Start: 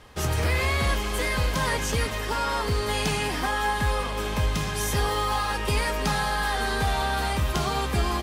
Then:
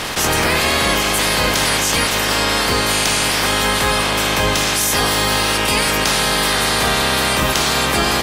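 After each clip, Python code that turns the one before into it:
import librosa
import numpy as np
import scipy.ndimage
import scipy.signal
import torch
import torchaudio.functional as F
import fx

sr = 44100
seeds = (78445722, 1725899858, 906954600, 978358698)

y = fx.spec_clip(x, sr, under_db=20)
y = fx.env_flatten(y, sr, amount_pct=70)
y = F.gain(torch.from_numpy(y), 5.5).numpy()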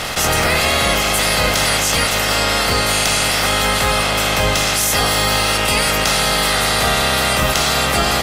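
y = x + 0.36 * np.pad(x, (int(1.5 * sr / 1000.0), 0))[:len(x)]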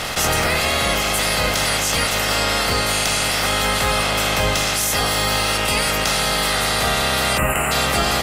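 y = fx.spec_box(x, sr, start_s=7.38, length_s=0.34, low_hz=3100.0, high_hz=6900.0, gain_db=-27)
y = fx.rider(y, sr, range_db=10, speed_s=0.5)
y = F.gain(torch.from_numpy(y), -3.0).numpy()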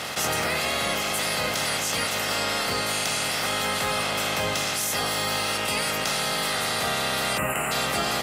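y = scipy.signal.sosfilt(scipy.signal.butter(2, 120.0, 'highpass', fs=sr, output='sos'), x)
y = F.gain(torch.from_numpy(y), -6.5).numpy()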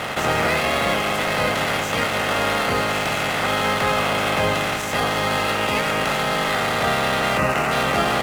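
y = scipy.signal.medfilt(x, 9)
y = np.interp(np.arange(len(y)), np.arange(len(y))[::2], y[::2])
y = F.gain(torch.from_numpy(y), 7.5).numpy()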